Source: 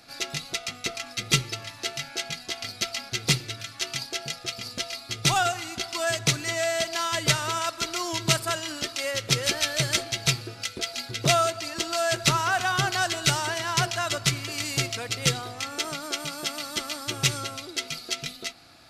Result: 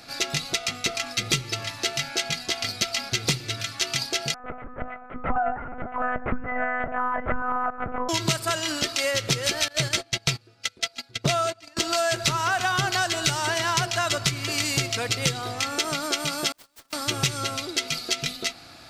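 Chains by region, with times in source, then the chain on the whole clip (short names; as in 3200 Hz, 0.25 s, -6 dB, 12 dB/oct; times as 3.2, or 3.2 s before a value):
4.34–8.09 steep low-pass 1600 Hz + bands offset in time highs, lows 50 ms, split 390 Hz + monotone LPC vocoder at 8 kHz 250 Hz
9.68–11.77 gate -31 dBFS, range -23 dB + high shelf 8100 Hz -5 dB
16.52–16.93 wrapped overs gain 29.5 dB + gate -33 dBFS, range -38 dB
whole clip: bell 11000 Hz -3.5 dB 0.27 oct; compressor, threshold -27 dBFS; gain +6.5 dB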